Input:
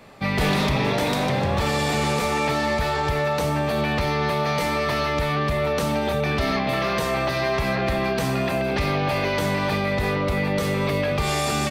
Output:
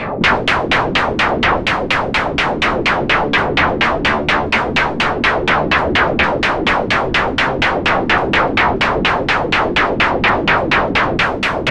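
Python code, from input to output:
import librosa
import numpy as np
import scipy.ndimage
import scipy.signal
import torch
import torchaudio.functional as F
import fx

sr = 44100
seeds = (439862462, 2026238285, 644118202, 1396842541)

y = fx.fold_sine(x, sr, drive_db=18, ceiling_db=-11.5)
y = fx.rider(y, sr, range_db=10, speed_s=2.0)
y = fx.filter_lfo_lowpass(y, sr, shape='saw_down', hz=4.2, low_hz=230.0, high_hz=3000.0, q=2.1)
y = F.gain(torch.from_numpy(y), 1.0).numpy()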